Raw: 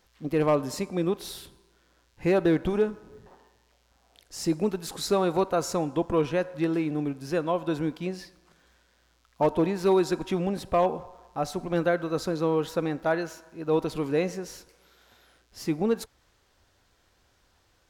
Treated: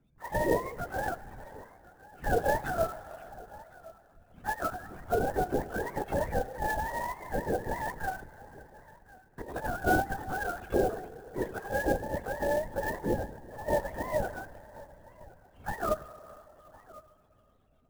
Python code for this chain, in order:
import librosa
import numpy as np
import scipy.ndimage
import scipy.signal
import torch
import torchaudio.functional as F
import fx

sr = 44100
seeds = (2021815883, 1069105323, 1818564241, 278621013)

y = fx.octave_mirror(x, sr, pivot_hz=530.0)
y = fx.over_compress(y, sr, threshold_db=-30.0, ratio=-0.5, at=(7.58, 9.71))
y = y + 10.0 ** (-21.0 / 20.0) * np.pad(y, (int(1061 * sr / 1000.0), 0))[:len(y)]
y = fx.rev_schroeder(y, sr, rt60_s=3.5, comb_ms=26, drr_db=14.5)
y = fx.lpc_vocoder(y, sr, seeds[0], excitation='whisper', order=16)
y = fx.clock_jitter(y, sr, seeds[1], jitter_ms=0.024)
y = F.gain(torch.from_numpy(y), -3.0).numpy()